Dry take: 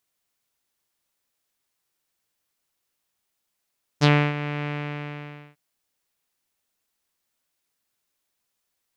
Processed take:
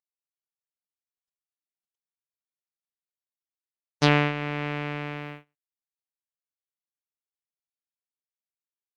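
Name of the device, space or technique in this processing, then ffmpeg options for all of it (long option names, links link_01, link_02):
video call: -af "highpass=160,dynaudnorm=framelen=230:gausssize=7:maxgain=4dB,agate=range=-29dB:threshold=-37dB:ratio=16:detection=peak" -ar 48000 -c:a libopus -b:a 24k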